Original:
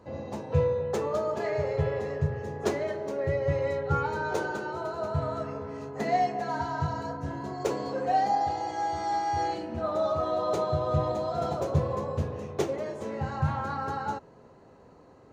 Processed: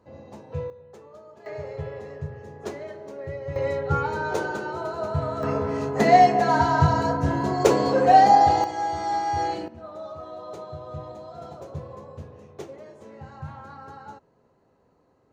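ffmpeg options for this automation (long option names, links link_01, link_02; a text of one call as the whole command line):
ffmpeg -i in.wav -af "asetnsamples=nb_out_samples=441:pad=0,asendcmd='0.7 volume volume -18dB;1.46 volume volume -6dB;3.56 volume volume 3dB;5.43 volume volume 11dB;8.64 volume volume 3dB;9.68 volume volume -10dB',volume=-7dB" out.wav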